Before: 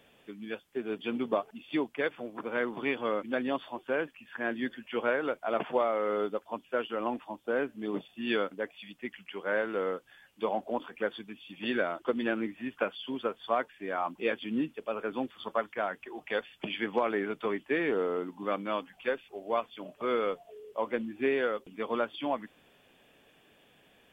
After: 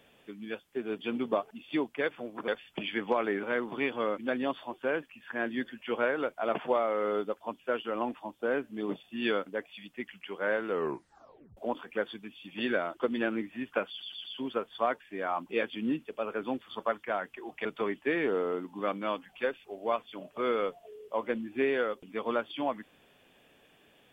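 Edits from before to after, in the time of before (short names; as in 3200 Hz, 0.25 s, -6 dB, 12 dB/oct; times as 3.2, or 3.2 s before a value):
9.76 tape stop 0.86 s
12.93 stutter 0.12 s, 4 plays
16.34–17.29 move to 2.48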